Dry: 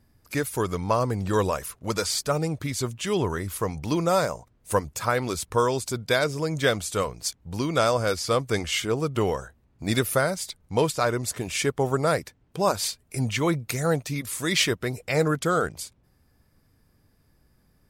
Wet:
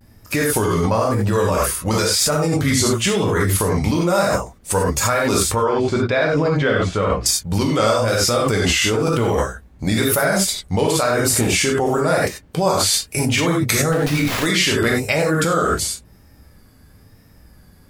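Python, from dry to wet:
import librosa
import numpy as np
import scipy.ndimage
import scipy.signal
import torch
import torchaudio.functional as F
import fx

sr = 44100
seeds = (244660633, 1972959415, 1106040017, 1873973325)

p1 = fx.lowpass(x, sr, hz=2500.0, slope=12, at=(5.55, 7.26))
p2 = fx.rev_gated(p1, sr, seeds[0], gate_ms=120, shape='flat', drr_db=-2.0)
p3 = fx.over_compress(p2, sr, threshold_db=-26.0, ratio=-0.5)
p4 = p2 + (p3 * 10.0 ** (2.0 / 20.0))
p5 = fx.vibrato(p4, sr, rate_hz=1.0, depth_cents=81.0)
y = fx.running_max(p5, sr, window=5, at=(13.92, 14.46))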